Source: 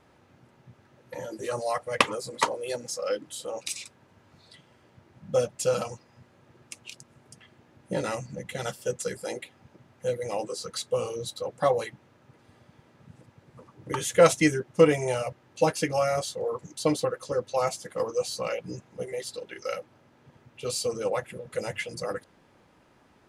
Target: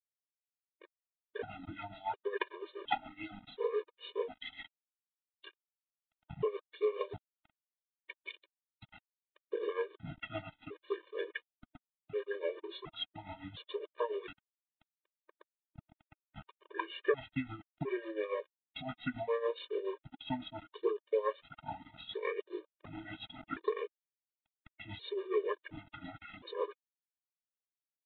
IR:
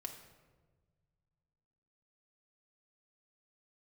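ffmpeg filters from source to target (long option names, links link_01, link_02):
-af "lowshelf=frequency=190:gain=-7.5,acompressor=threshold=-40dB:ratio=3,aeval=exprs='val(0)*gte(abs(val(0)),0.00422)':channel_layout=same,tremolo=f=8.6:d=0.77,asetrate=36603,aresample=44100,aphaser=in_gain=1:out_gain=1:delay=4.1:decay=0.34:speed=0.13:type=sinusoidal,aresample=8000,aresample=44100,afftfilt=real='re*gt(sin(2*PI*0.7*pts/sr)*(1-2*mod(floor(b*sr/1024/310),2)),0)':imag='im*gt(sin(2*PI*0.7*pts/sr)*(1-2*mod(floor(b*sr/1024/310),2)),0)':win_size=1024:overlap=0.75,volume=8dB"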